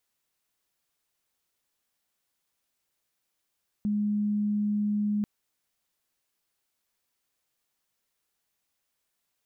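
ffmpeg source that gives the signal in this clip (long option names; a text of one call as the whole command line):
ffmpeg -f lavfi -i "sine=frequency=208:duration=1.39:sample_rate=44100,volume=-5.94dB" out.wav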